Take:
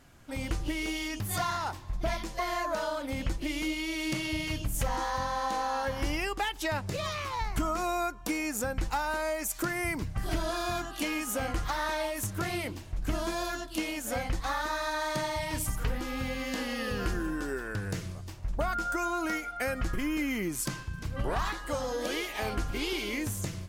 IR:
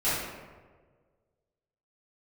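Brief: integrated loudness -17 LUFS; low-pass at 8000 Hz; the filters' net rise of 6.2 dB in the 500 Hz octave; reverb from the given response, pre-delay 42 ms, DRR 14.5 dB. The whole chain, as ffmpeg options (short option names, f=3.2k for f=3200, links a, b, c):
-filter_complex "[0:a]lowpass=8k,equalizer=f=500:t=o:g=8,asplit=2[a][b];[1:a]atrim=start_sample=2205,adelay=42[c];[b][c]afir=irnorm=-1:irlink=0,volume=-26.5dB[d];[a][d]amix=inputs=2:normalize=0,volume=13dB"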